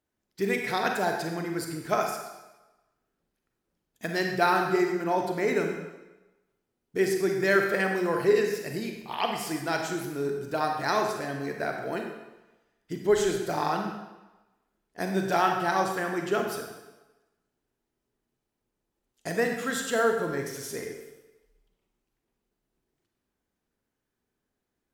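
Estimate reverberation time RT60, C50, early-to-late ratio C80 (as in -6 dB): 1.1 s, 4.0 dB, 6.0 dB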